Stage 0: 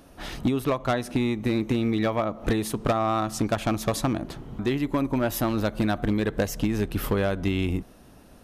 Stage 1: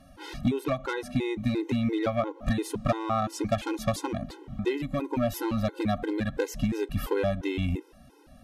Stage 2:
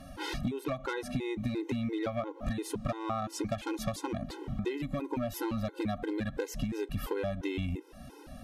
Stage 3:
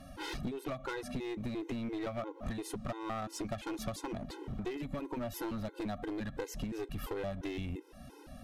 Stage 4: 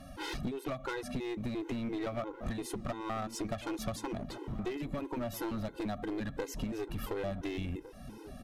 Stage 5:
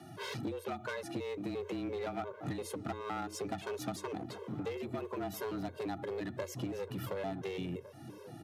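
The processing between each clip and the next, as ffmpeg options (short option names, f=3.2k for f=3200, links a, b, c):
-af "highshelf=f=9.2k:g=-6.5,afftfilt=real='re*gt(sin(2*PI*2.9*pts/sr)*(1-2*mod(floor(b*sr/1024/270),2)),0)':imag='im*gt(sin(2*PI*2.9*pts/sr)*(1-2*mod(floor(b*sr/1024/270),2)),0)':win_size=1024:overlap=0.75"
-af "acompressor=threshold=-39dB:ratio=4,volume=6dB"
-af "aeval=exprs='clip(val(0),-1,0.02)':c=same,volume=-3dB"
-filter_complex "[0:a]asplit=2[a][b];[b]adelay=1458,volume=-14dB,highshelf=f=4k:g=-32.8[c];[a][c]amix=inputs=2:normalize=0,volume=1.5dB"
-af "afreqshift=88,volume=-2dB"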